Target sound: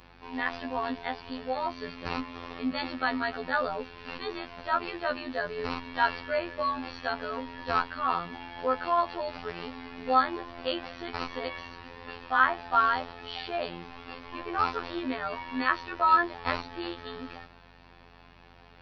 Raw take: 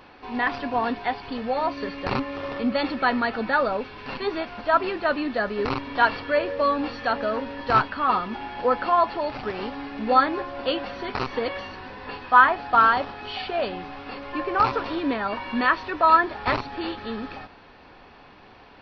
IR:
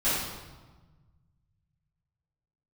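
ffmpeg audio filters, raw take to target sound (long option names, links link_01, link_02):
-af "afftfilt=real='hypot(re,im)*cos(PI*b)':imag='0':win_size=2048:overlap=0.75,highshelf=frequency=2600:gain=5,aeval=exprs='val(0)+0.002*(sin(2*PI*50*n/s)+sin(2*PI*2*50*n/s)/2+sin(2*PI*3*50*n/s)/3+sin(2*PI*4*50*n/s)/4+sin(2*PI*5*50*n/s)/5)':channel_layout=same,volume=-4dB"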